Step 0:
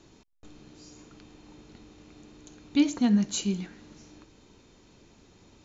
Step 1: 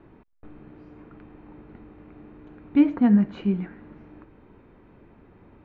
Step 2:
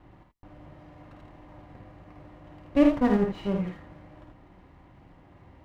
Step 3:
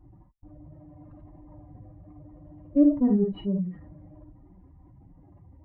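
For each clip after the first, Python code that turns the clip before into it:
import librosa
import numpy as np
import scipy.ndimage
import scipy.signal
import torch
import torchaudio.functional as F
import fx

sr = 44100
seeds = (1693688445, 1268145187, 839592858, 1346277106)

y1 = scipy.signal.sosfilt(scipy.signal.butter(4, 2000.0, 'lowpass', fs=sr, output='sos'), x)
y1 = F.gain(torch.from_numpy(y1), 5.0).numpy()
y2 = fx.lower_of_two(y1, sr, delay_ms=1.0)
y2 = fx.notch_comb(y2, sr, f0_hz=220.0)
y2 = fx.room_early_taps(y2, sr, ms=(52, 79), db=(-6.0, -5.5))
y3 = fx.spec_expand(y2, sr, power=2.1)
y3 = F.gain(torch.from_numpy(y3), 1.0).numpy()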